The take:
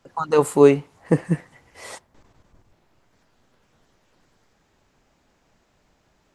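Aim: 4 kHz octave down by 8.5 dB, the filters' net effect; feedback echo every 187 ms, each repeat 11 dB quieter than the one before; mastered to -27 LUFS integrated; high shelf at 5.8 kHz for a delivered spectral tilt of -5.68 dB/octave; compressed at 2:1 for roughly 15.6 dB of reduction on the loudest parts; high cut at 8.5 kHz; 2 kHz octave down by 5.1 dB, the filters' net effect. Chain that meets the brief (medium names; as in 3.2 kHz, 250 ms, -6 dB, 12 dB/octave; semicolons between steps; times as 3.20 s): low-pass 8.5 kHz; peaking EQ 2 kHz -4 dB; peaking EQ 4 kHz -8.5 dB; treble shelf 5.8 kHz -3 dB; compression 2:1, threshold -37 dBFS; feedback delay 187 ms, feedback 28%, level -11 dB; trim +7.5 dB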